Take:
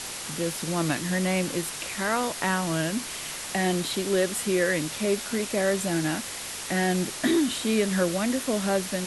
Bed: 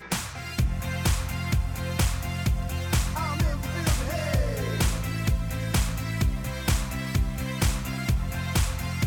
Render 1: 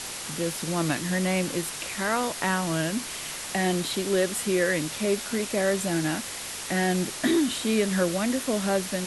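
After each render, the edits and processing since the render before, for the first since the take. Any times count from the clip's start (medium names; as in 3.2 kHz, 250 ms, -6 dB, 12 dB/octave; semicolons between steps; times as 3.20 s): no audible change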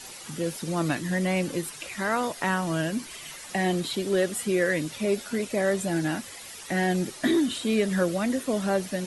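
noise reduction 11 dB, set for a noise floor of -36 dBFS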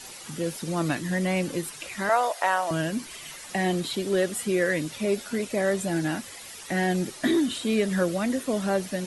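2.09–2.71 s: resonant high-pass 650 Hz, resonance Q 2.6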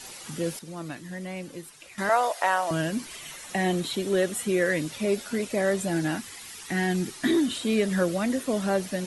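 0.59–1.98 s: gain -10 dB; 3.19–4.66 s: band-stop 4.8 kHz, Q 11; 6.17–7.29 s: peaking EQ 580 Hz -14 dB 0.38 oct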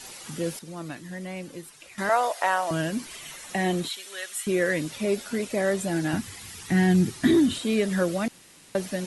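3.88–4.47 s: high-pass 1.5 kHz; 6.13–7.59 s: peaking EQ 96 Hz +15 dB 2 oct; 8.28–8.75 s: room tone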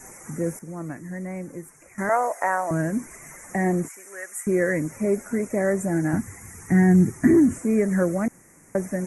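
Chebyshev band-stop 2.1–6.2 kHz, order 3; bass shelf 460 Hz +5 dB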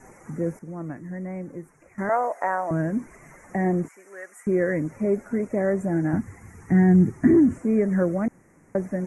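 low-pass 1.4 kHz 6 dB/octave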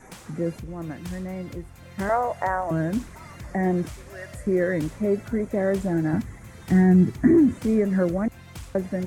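add bed -15.5 dB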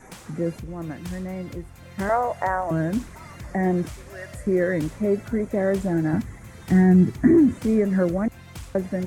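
trim +1 dB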